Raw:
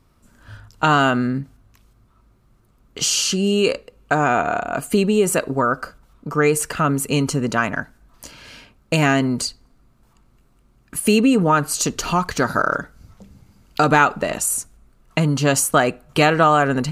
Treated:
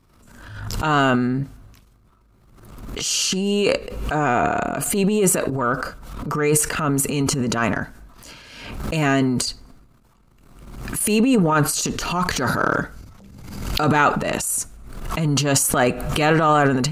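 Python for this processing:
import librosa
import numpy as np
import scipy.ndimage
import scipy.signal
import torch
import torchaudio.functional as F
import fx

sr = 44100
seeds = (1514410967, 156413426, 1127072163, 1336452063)

y = fx.transient(x, sr, attack_db=-11, sustain_db=10)
y = fx.pre_swell(y, sr, db_per_s=48.0)
y = y * 10.0 ** (-1.5 / 20.0)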